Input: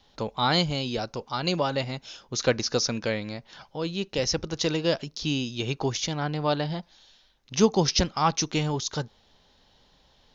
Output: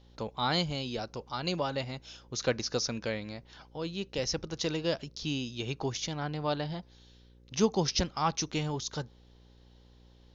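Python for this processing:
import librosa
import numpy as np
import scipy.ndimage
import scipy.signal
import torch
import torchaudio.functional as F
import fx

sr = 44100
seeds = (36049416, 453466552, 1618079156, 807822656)

y = fx.dmg_buzz(x, sr, base_hz=60.0, harmonics=9, level_db=-52.0, tilt_db=-6, odd_only=False)
y = F.gain(torch.from_numpy(y), -6.0).numpy()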